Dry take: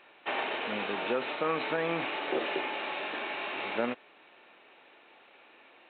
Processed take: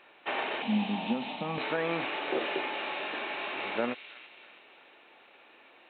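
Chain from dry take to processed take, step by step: 0.62–1.58 EQ curve 120 Hz 0 dB, 220 Hz +15 dB, 360 Hz -10 dB, 520 Hz -9 dB, 820 Hz +3 dB, 1400 Hz -15 dB, 2900 Hz -1 dB; thin delay 0.327 s, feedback 44%, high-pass 2800 Hz, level -6 dB

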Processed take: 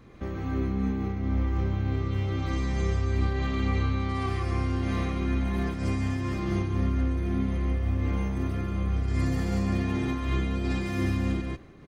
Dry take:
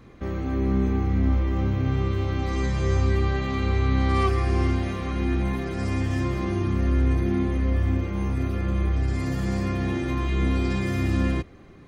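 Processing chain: compressor, threshold -22 dBFS, peak gain reduction 5.5 dB; echo 0.142 s -3.5 dB; noise-modulated level, depth 55%

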